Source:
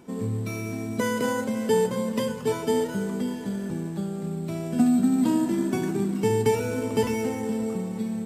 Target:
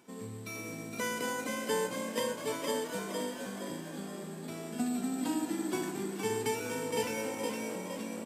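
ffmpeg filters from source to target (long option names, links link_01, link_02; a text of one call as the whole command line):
ffmpeg -i in.wav -filter_complex "[0:a]highpass=frequency=140:poles=1,tiltshelf=frequency=840:gain=-5,asplit=2[link_01][link_02];[link_02]asplit=6[link_03][link_04][link_05][link_06][link_07][link_08];[link_03]adelay=465,afreqshift=53,volume=-4dB[link_09];[link_04]adelay=930,afreqshift=106,volume=-10.7dB[link_10];[link_05]adelay=1395,afreqshift=159,volume=-17.5dB[link_11];[link_06]adelay=1860,afreqshift=212,volume=-24.2dB[link_12];[link_07]adelay=2325,afreqshift=265,volume=-31dB[link_13];[link_08]adelay=2790,afreqshift=318,volume=-37.7dB[link_14];[link_09][link_10][link_11][link_12][link_13][link_14]amix=inputs=6:normalize=0[link_15];[link_01][link_15]amix=inputs=2:normalize=0,volume=-8dB" out.wav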